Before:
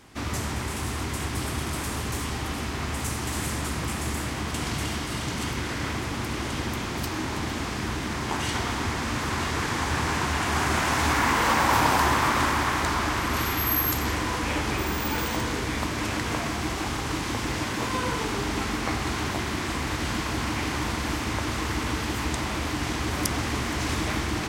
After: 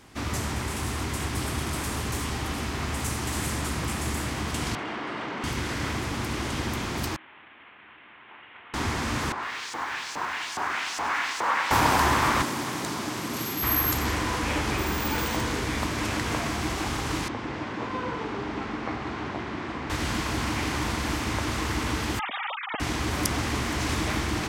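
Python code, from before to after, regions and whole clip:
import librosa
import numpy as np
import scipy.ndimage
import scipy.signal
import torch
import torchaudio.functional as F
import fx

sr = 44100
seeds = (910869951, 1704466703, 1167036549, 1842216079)

y = fx.chain(x, sr, fx.bandpass_edges(low_hz=310.0, high_hz=2100.0),
    fx.env_flatten(amount_pct=100), at=(4.75, 5.44))
y = fx.chain(y, sr, fx.cvsd(bps=16000),
    fx.lowpass(hz=2400.0, slope=6),
    fx.differentiator(), at=(7.16, 8.74))
y = fx.chain(y, sr, fx.filter_lfo_bandpass(shape='saw_up', hz=2.4, low_hz=700.0, high_hz=6900.0, q=1.2),
    fx.echo_crushed(ms=99, feedback_pct=80, bits=8, wet_db=-12.0), at=(9.32, 11.71))
y = fx.chain(y, sr, fx.highpass(hz=130.0, slope=24),
    fx.peak_eq(hz=1400.0, db=-9.0, octaves=2.5), at=(12.42, 13.63))
y = fx.chain(y, sr, fx.highpass(hz=200.0, slope=6),
    fx.spacing_loss(db_at_10k=28), at=(17.28, 19.9))
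y = fx.chain(y, sr, fx.sine_speech(),
    fx.low_shelf(hz=460.0, db=-8.0),
    fx.ring_mod(carrier_hz=200.0), at=(22.19, 22.8))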